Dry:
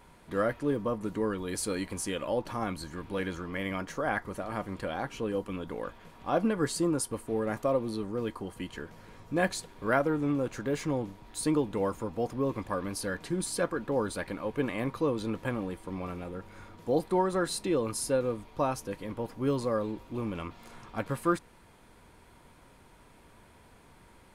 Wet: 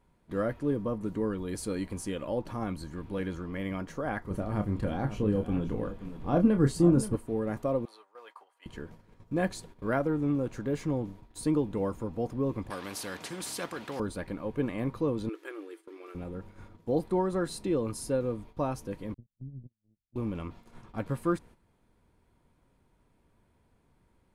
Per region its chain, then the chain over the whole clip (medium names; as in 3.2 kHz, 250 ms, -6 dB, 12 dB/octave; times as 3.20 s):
4.30–7.16 s: bass shelf 250 Hz +10 dB + doubling 29 ms -8 dB + delay 527 ms -12.5 dB
7.85–8.66 s: high-pass 740 Hz 24 dB/octave + treble shelf 3.6 kHz -8 dB
12.70–14.00 s: frequency weighting A + spectrum-flattening compressor 2:1
15.29–16.15 s: brick-wall FIR high-pass 300 Hz + high-order bell 720 Hz -11.5 dB 1.3 oct
19.14–20.16 s: compression 4:1, threshold -34 dBFS + inverse Chebyshev low-pass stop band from 860 Hz, stop band 70 dB + gate -44 dBFS, range -33 dB
whole clip: gate -48 dBFS, range -11 dB; bass shelf 500 Hz +9.5 dB; trim -6.5 dB